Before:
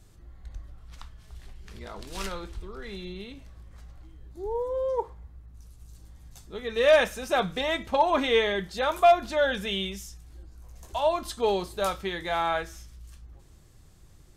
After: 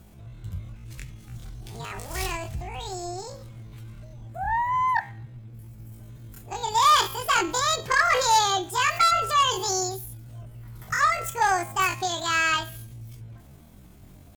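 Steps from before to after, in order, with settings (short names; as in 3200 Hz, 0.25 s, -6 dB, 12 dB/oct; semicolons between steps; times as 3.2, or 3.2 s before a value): added harmonics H 4 -41 dB, 5 -15 dB, 6 -28 dB, 7 -38 dB, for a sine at -9.5 dBFS; de-hum 137.9 Hz, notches 13; pitch shift +11.5 st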